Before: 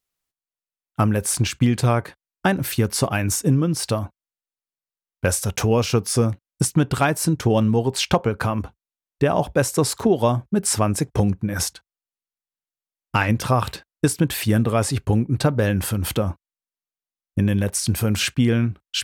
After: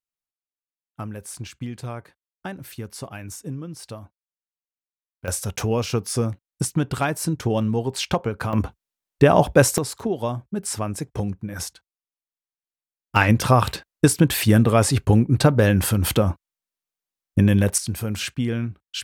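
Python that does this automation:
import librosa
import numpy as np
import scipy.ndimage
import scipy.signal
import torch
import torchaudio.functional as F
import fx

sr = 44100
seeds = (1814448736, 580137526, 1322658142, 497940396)

y = fx.gain(x, sr, db=fx.steps((0.0, -14.0), (5.28, -4.0), (8.53, 4.5), (9.78, -7.0), (13.16, 3.0), (17.78, -6.0)))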